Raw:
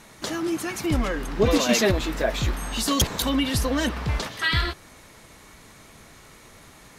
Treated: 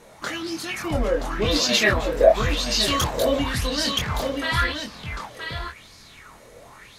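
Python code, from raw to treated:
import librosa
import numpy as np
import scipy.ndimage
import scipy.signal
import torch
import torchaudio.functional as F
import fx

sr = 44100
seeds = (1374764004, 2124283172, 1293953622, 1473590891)

y = fx.chorus_voices(x, sr, voices=4, hz=0.46, base_ms=24, depth_ms=1.1, mix_pct=40)
y = y + 10.0 ** (-6.0 / 20.0) * np.pad(y, (int(974 * sr / 1000.0), 0))[:len(y)]
y = fx.bell_lfo(y, sr, hz=0.92, low_hz=480.0, high_hz=4900.0, db=16)
y = F.gain(torch.from_numpy(y), -1.0).numpy()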